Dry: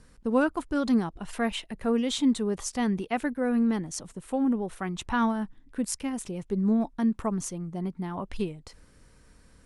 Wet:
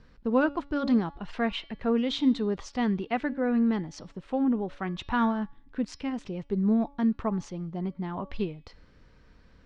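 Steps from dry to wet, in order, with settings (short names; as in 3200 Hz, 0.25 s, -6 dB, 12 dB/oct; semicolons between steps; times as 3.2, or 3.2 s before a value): LPF 4600 Hz 24 dB/oct; de-hum 283 Hz, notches 20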